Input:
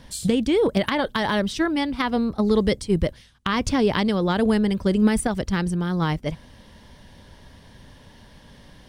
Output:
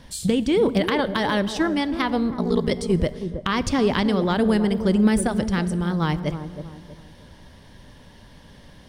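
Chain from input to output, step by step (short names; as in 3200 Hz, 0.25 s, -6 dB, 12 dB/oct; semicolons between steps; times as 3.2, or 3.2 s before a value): vibrato 8.5 Hz 12 cents; 2.31–2.71 ring modulator 29 Hz; dark delay 0.32 s, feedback 34%, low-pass 830 Hz, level -8.5 dB; plate-style reverb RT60 1.6 s, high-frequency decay 0.8×, DRR 16 dB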